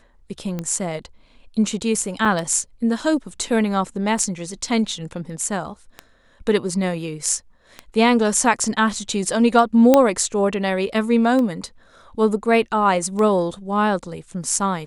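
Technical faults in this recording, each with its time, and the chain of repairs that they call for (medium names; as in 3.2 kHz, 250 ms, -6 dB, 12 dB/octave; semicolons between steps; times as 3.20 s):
tick 33 1/3 rpm -14 dBFS
2.25 s: dropout 3.4 ms
9.94 s: pop -1 dBFS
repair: de-click; interpolate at 2.25 s, 3.4 ms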